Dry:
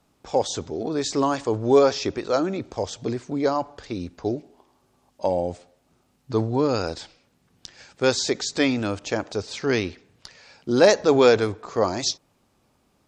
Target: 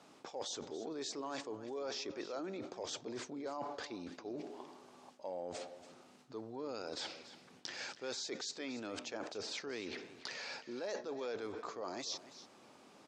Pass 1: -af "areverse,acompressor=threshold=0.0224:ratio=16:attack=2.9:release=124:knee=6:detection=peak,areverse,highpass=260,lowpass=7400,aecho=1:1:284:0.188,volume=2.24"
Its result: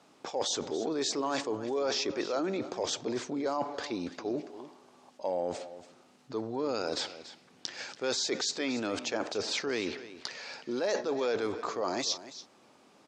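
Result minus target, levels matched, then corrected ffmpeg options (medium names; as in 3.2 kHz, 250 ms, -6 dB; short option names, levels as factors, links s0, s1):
compression: peak gain reduction -11 dB
-af "areverse,acompressor=threshold=0.00596:ratio=16:attack=2.9:release=124:knee=6:detection=peak,areverse,highpass=260,lowpass=7400,aecho=1:1:284:0.188,volume=2.24"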